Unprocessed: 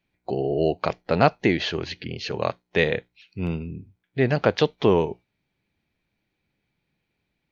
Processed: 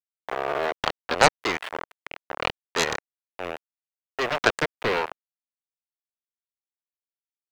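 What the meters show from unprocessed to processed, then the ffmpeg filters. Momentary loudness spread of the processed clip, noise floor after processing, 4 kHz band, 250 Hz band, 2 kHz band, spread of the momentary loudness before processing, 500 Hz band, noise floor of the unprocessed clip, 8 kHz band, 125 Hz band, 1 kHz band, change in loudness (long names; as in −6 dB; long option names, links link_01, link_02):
17 LU, below −85 dBFS, +2.0 dB, −10.5 dB, +3.0 dB, 13 LU, −5.5 dB, −78 dBFS, can't be measured, −13.0 dB, +1.5 dB, −2.0 dB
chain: -filter_complex "[0:a]aeval=exprs='val(0)*gte(abs(val(0)),0.0891)':channel_layout=same,acrossover=split=500 2600:gain=0.1 1 0.0708[link_01][link_02][link_03];[link_01][link_02][link_03]amix=inputs=3:normalize=0,aeval=exprs='0.447*(cos(1*acos(clip(val(0)/0.447,-1,1)))-cos(1*PI/2))+0.158*(cos(7*acos(clip(val(0)/0.447,-1,1)))-cos(7*PI/2))':channel_layout=same,volume=3dB"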